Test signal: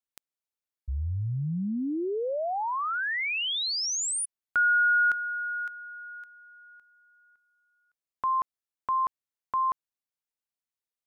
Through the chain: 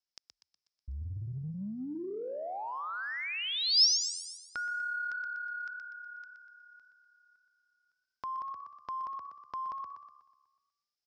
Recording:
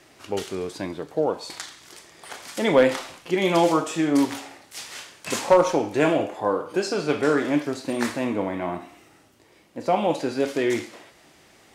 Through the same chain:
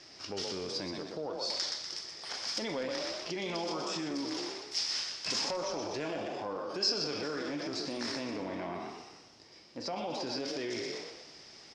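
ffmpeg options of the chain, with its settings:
-filter_complex "[0:a]asplit=2[s0][s1];[s1]asplit=4[s2][s3][s4][s5];[s2]adelay=122,afreqshift=35,volume=0.422[s6];[s3]adelay=244,afreqshift=70,volume=0.16[s7];[s4]adelay=366,afreqshift=105,volume=0.061[s8];[s5]adelay=488,afreqshift=140,volume=0.0232[s9];[s6][s7][s8][s9]amix=inputs=4:normalize=0[s10];[s0][s10]amix=inputs=2:normalize=0,acompressor=threshold=0.0251:ratio=4:attack=4:release=22:knee=6,lowpass=f=5200:t=q:w=8.6,asplit=2[s11][s12];[s12]aecho=0:1:246|492|738:0.112|0.0381|0.013[s13];[s11][s13]amix=inputs=2:normalize=0,volume=0.562"

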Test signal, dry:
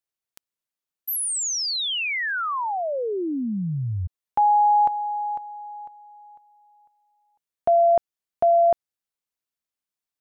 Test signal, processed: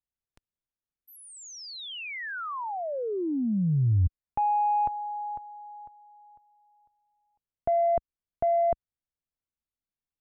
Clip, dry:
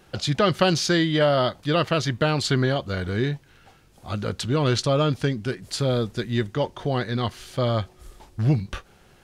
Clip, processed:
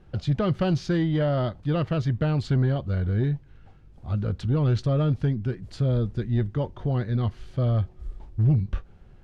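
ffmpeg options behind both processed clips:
-af "aemphasis=mode=reproduction:type=riaa,asoftclip=type=tanh:threshold=0.473,volume=0.422"

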